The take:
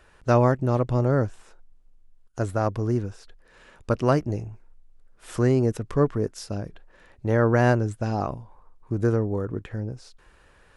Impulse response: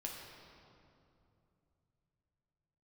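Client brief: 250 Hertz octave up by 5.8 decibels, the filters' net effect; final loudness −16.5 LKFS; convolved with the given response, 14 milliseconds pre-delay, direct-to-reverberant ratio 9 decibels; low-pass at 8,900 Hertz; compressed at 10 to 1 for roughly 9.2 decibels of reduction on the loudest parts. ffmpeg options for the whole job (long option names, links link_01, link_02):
-filter_complex "[0:a]lowpass=8900,equalizer=frequency=250:width_type=o:gain=7,acompressor=threshold=-21dB:ratio=10,asplit=2[link_01][link_02];[1:a]atrim=start_sample=2205,adelay=14[link_03];[link_02][link_03]afir=irnorm=-1:irlink=0,volume=-8dB[link_04];[link_01][link_04]amix=inputs=2:normalize=0,volume=11.5dB"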